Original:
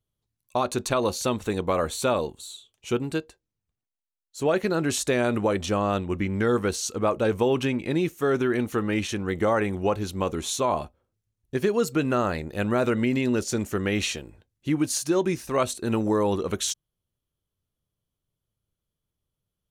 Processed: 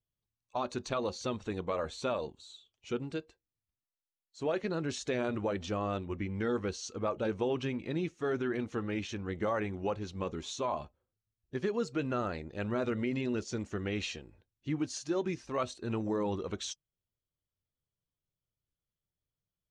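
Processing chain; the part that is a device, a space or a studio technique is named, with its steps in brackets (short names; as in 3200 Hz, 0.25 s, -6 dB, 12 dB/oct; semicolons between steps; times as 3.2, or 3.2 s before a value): clip after many re-uploads (LPF 6400 Hz 24 dB/oct; bin magnitudes rounded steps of 15 dB); gain -9 dB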